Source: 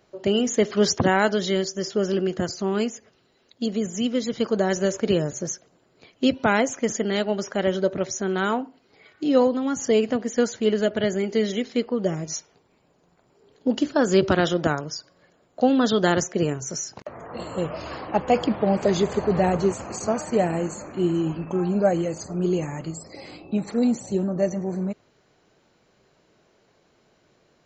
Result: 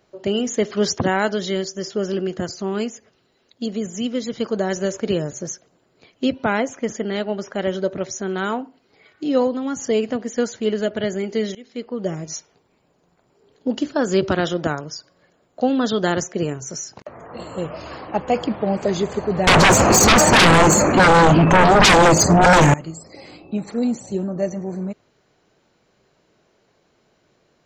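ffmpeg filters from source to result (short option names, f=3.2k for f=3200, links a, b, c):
-filter_complex "[0:a]asettb=1/sr,asplit=3[a][b][c];[a]atrim=end=6.264[d];[b]atrim=start=6.26:end=7.56,asetpts=PTS-STARTPTS,afade=t=in:d=0.004:c=qsin,afade=t=out:st=1.296:d=0.004:c=qsin,highshelf=f=6.5k:g=-12[e];[c]atrim=start=7.556[f];[d][e]acrossfade=d=0.004:c1=hsin:c2=qsin[g];[g][f]acrossfade=d=0.004:c1=qsin:c2=hsin,asettb=1/sr,asplit=3[h][i][j];[h]atrim=end=19.474[k];[i]atrim=start=19.47:end=22.74,asetpts=PTS-STARTPTS,afade=t=in:d=0.004:c=qsin,afade=t=out:st=3.266:d=0.004:c=qsin,aeval=exprs='0.398*sin(PI/2*8.91*val(0)/0.398)':c=same[l];[j]atrim=start=22.736[m];[k][l]acrossfade=d=0.004:c1=hsin:c2=qsin[n];[n][m]acrossfade=d=0.004:c1=qsin:c2=hsin,asplit=2[o][p];[o]atrim=end=11.55,asetpts=PTS-STARTPTS,afade=t=out:st=11.546:d=0.004:c=hsin:silence=0.0891251[q];[p]atrim=start=11.55,asetpts=PTS-STARTPTS,afade=t=in:d=0.55:silence=0.0891251[r];[q][r]concat=n=2:v=0:a=1"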